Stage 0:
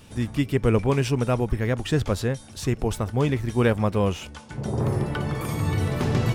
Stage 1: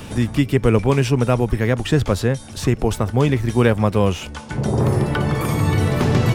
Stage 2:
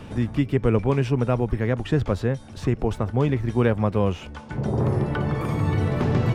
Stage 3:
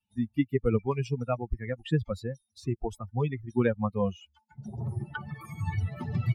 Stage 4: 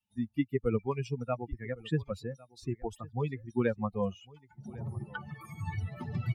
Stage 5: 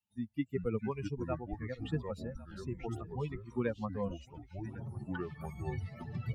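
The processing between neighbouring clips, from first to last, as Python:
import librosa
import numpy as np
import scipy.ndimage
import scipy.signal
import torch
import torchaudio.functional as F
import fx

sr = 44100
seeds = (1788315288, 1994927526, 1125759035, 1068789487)

y1 = fx.band_squash(x, sr, depth_pct=40)
y1 = y1 * librosa.db_to_amplitude(5.5)
y2 = fx.lowpass(y1, sr, hz=2000.0, slope=6)
y2 = y2 * librosa.db_to_amplitude(-4.5)
y3 = fx.bin_expand(y2, sr, power=3.0)
y4 = fx.low_shelf(y3, sr, hz=100.0, db=-5.0)
y4 = y4 + 10.0 ** (-22.5 / 20.0) * np.pad(y4, (int(1104 * sr / 1000.0), 0))[:len(y4)]
y4 = y4 * librosa.db_to_amplitude(-3.0)
y5 = fx.echo_pitch(y4, sr, ms=317, semitones=-5, count=3, db_per_echo=-6.0)
y5 = y5 * librosa.db_to_amplitude(-5.0)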